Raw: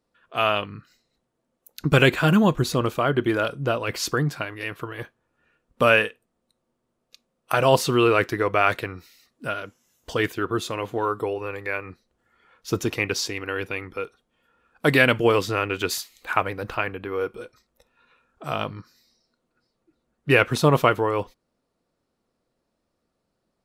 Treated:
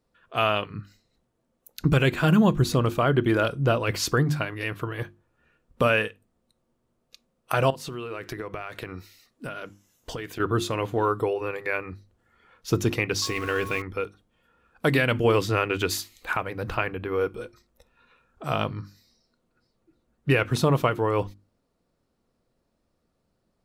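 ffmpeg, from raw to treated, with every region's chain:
-filter_complex "[0:a]asettb=1/sr,asplit=3[a][b][c];[a]atrim=end=7.704[d];[b]atrim=start=7.7:end=10.4,asetpts=PTS-STARTPTS,afade=t=in:d=0.004:c=qsin,afade=t=out:st=2.696:d=0.004:c=qsin,equalizer=f=68:w=0.68:g=-6.5,acompressor=threshold=-31dB:ratio=12:attack=3.2:release=140:knee=1:detection=peak[e];[c]atrim=start=10.396[f];[d][e]acrossfade=d=0.004:c1=hsin:c2=qsin[g];[g][f]acrossfade=d=0.004:c1=qsin:c2=hsin,asettb=1/sr,asplit=3[h][i][j];[h]atrim=end=13.224[k];[i]atrim=start=13.22:end=13.82,asetpts=PTS-STARTPTS,afade=t=in:d=0.004:c=qsin,afade=t=out:st=0.596:d=0.004:c=qsin,aeval=exprs='val(0)+0.5*0.0119*sgn(val(0))':c=same,aeval=exprs='val(0)+0.02*sin(2*PI*1100*n/s)':c=same,asplit=2[l][m];[m]adelay=15,volume=-11.5dB[n];[l][n]amix=inputs=2:normalize=0,atrim=end_sample=26460[o];[j]atrim=start=13.816[p];[k][o]acrossfade=d=0.004:c1=hsin:c2=qsin[q];[q][p]acrossfade=d=0.004:c1=qsin:c2=hsin,lowshelf=f=190:g=8.5,bandreject=f=50:t=h:w=6,bandreject=f=100:t=h:w=6,bandreject=f=150:t=h:w=6,bandreject=f=200:t=h:w=6,bandreject=f=250:t=h:w=6,bandreject=f=300:t=h:w=6,bandreject=f=350:t=h:w=6,alimiter=limit=-10.5dB:level=0:latency=1:release=350"

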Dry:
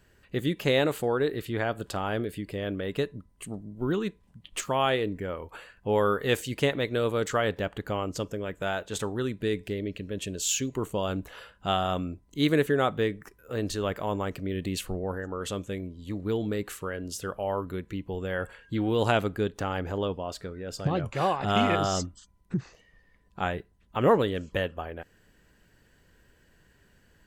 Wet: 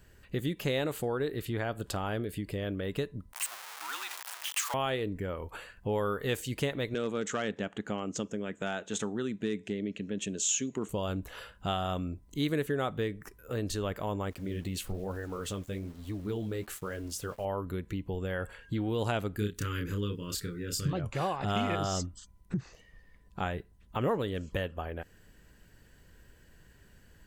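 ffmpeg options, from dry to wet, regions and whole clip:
-filter_complex "[0:a]asettb=1/sr,asplit=3[a][b][c];[a]atrim=end=3.334[d];[b]atrim=start=3.33:end=4.74,asetpts=PTS-STARTPTS,afade=t=in:d=0.004:c=qsin,afade=t=out:st=1.406:d=0.004:c=qsin,aeval=exprs='val(0)+0.5*0.0316*sgn(val(0))':c=same,highpass=f=960:w=0.5412,highpass=f=960:w=1.3066,afreqshift=-65[e];[c]atrim=start=4.736[f];[d][e]acrossfade=d=0.004:c1=hsin:c2=qsin[g];[g][f]acrossfade=d=0.004:c1=qsin:c2=hsin,asettb=1/sr,asplit=3[h][i][j];[h]atrim=end=6.944[k];[i]atrim=start=6.94:end=10.89,asetpts=PTS-STARTPTS,afade=t=in:d=0.004:c=qsin,afade=t=out:st=3.946:d=0.004:c=qsin,asoftclip=type=hard:threshold=-19.5dB,highpass=200,equalizer=f=210:t=q:w=4:g=8,equalizer=f=560:t=q:w=4:g=-4,equalizer=f=1k:t=q:w=4:g=-4,equalizer=f=4.6k:t=q:w=4:g=-8,equalizer=f=6.7k:t=q:w=4:g=5,lowpass=f=7.6k:w=0.5412,lowpass=f=7.6k:w=1.3066[l];[j]atrim=start=10.886[m];[k][l]acrossfade=d=0.004:c1=hsin:c2=qsin[n];[n][m]acrossfade=d=0.004:c1=qsin:c2=hsin,asettb=1/sr,asplit=3[o][p][q];[o]atrim=end=14.304[r];[p]atrim=start=14.3:end=17.45,asetpts=PTS-STARTPTS,afade=t=in:d=0.004:c=qsin,afade=t=out:st=3.146:d=0.004:c=qsin,aeval=exprs='val(0)*gte(abs(val(0)),0.00422)':c=same,flanger=delay=2.7:depth=9.4:regen=-44:speed=1.1:shape=sinusoidal[s];[q]atrim=start=17.446[t];[r][s]acrossfade=d=0.004:c1=hsin:c2=qsin[u];[u][t]acrossfade=d=0.004:c1=qsin:c2=hsin,asettb=1/sr,asplit=3[v][w][x];[v]atrim=end=19.364[y];[w]atrim=start=19.36:end=20.93,asetpts=PTS-STARTPTS,afade=t=in:d=0.004:c=qsin,afade=t=out:st=1.566:d=0.004:c=qsin,asuperstop=centerf=730:order=4:qfactor=0.83,highshelf=f=8.1k:g=11,asplit=2[z][aa];[aa]adelay=29,volume=-3dB[ab];[z][ab]amix=inputs=2:normalize=0,atrim=end_sample=69237[ac];[x]atrim=start=20.926[ad];[y][ac]acrossfade=d=0.004:c1=hsin:c2=qsin[ae];[ae][ad]acrossfade=d=0.004:c1=qsin:c2=hsin,lowshelf=f=130:g=6.5,acompressor=threshold=-33dB:ratio=2,highshelf=f=6.8k:g=5.5"

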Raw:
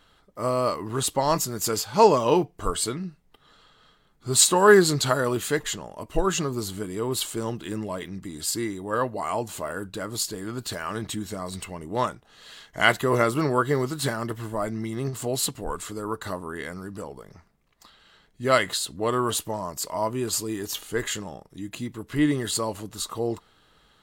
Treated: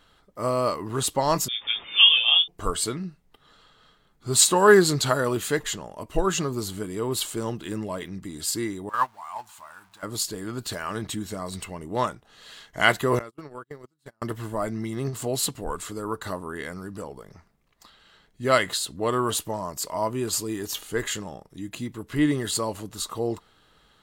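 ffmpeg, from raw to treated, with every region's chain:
-filter_complex "[0:a]asettb=1/sr,asplit=3[a][b][c];[a]atrim=end=1.484[d];[b]atrim=start=1.48:end=2.48,asetpts=PTS-STARTPTS,afade=t=in:d=0.004:c=qsin,afade=t=out:st=0.996:d=0.004:c=qsin,deesser=0.35,asplit=2[e][f];[f]adelay=17,volume=-7.5dB[g];[e][g]amix=inputs=2:normalize=0,atrim=end_sample=44100,lowpass=f=3.1k:t=q:w=0.5098,lowpass=f=3.1k:t=q:w=0.6013,lowpass=f=3.1k:t=q:w=0.9,lowpass=f=3.1k:t=q:w=2.563,afreqshift=-3700[h];[c]atrim=start=2.476[i];[d][h]acrossfade=d=0.004:c1=hsin:c2=qsin[j];[j][i]acrossfade=d=0.004:c1=qsin:c2=hsin,asettb=1/sr,asplit=3[k][l][m];[k]atrim=end=8.894[n];[l]atrim=start=8.89:end=10.03,asetpts=PTS-STARTPTS,afade=t=in:d=0.004:c=qsin,afade=t=out:st=1.136:d=0.004:c=qsin,aeval=exprs='val(0)+0.5*0.0158*sgn(val(0))':c=same,agate=range=-15dB:threshold=-24dB:ratio=16:release=100:detection=peak,lowshelf=f=660:t=q:w=3:g=-11[o];[m]atrim=start=10.026[p];[n][o]acrossfade=d=0.004:c1=hsin:c2=qsin[q];[q][p]acrossfade=d=0.004:c1=qsin:c2=hsin,asettb=1/sr,asplit=3[r][s][t];[r]atrim=end=13.194[u];[s]atrim=start=13.19:end=14.22,asetpts=PTS-STARTPTS,afade=t=in:d=0.004:c=qsin,afade=t=out:st=1.026:d=0.004:c=qsin,agate=range=-43dB:threshold=-22dB:ratio=16:release=100:detection=peak,acompressor=threshold=-35dB:ratio=8:attack=3.2:release=140:knee=1:detection=peak[v];[t]atrim=start=14.216[w];[u][v]acrossfade=d=0.004:c1=hsin:c2=qsin[x];[x][w]acrossfade=d=0.004:c1=qsin:c2=hsin"

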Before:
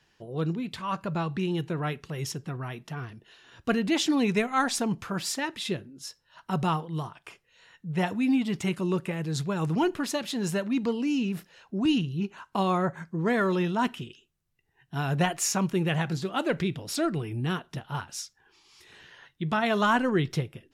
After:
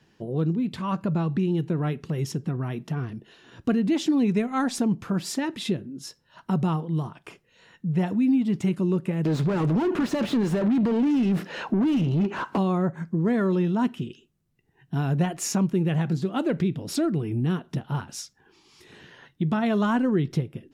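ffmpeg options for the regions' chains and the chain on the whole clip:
-filter_complex "[0:a]asettb=1/sr,asplit=3[a][b][c];[a]atrim=end=9.254[d];[b]atrim=start=9.25:end=12.58,asetpts=PTS-STARTPTS,afade=t=in:d=0.004:c=qsin,afade=t=out:st=3.326:d=0.004:c=qsin,acompressor=threshold=-31dB:ratio=2:attack=3.2:release=140:knee=1:detection=peak,asplit=2[e][f];[f]highpass=f=720:p=1,volume=31dB,asoftclip=type=tanh:threshold=-18.5dB[g];[e][g]amix=inputs=2:normalize=0,lowpass=f=1.7k:p=1,volume=-6dB[h];[c]atrim=start=12.576[i];[d][h]acrossfade=d=0.004:c1=hsin:c2=qsin[j];[j][i]acrossfade=d=0.004:c1=qsin:c2=hsin,equalizer=f=220:w=0.5:g=12.5,acompressor=threshold=-26dB:ratio=2"

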